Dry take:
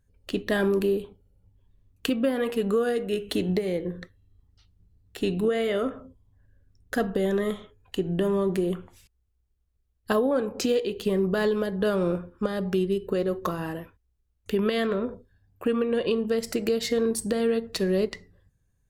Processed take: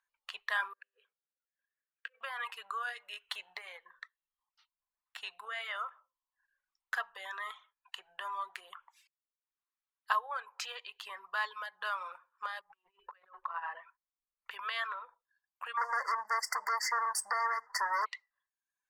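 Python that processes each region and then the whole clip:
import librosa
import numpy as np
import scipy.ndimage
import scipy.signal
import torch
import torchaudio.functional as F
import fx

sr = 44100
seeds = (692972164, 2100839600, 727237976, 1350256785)

y = fx.chain(x, sr, fx.over_compress(threshold_db=-30.0, ratio=-0.5),
    fx.double_bandpass(hz=910.0, octaves=1.7), at=(0.73, 2.21))
y = fx.chain(y, sr, fx.lowpass(hz=1700.0, slope=12),
    fx.low_shelf(hz=150.0, db=7.5),
    fx.over_compress(threshold_db=-31.0, ratio=-0.5), at=(12.61, 14.51))
y = fx.chain(y, sr, fx.leveller(passes=3),
    fx.brickwall_bandstop(low_hz=2100.0, high_hz=4500.0), at=(15.77, 18.06))
y = scipy.signal.sosfilt(scipy.signal.ellip(4, 1.0, 70, 980.0, 'highpass', fs=sr, output='sos'), y)
y = fx.dereverb_blind(y, sr, rt60_s=0.69)
y = fx.tilt_eq(y, sr, slope=-4.5)
y = F.gain(torch.from_numpy(y), 3.0).numpy()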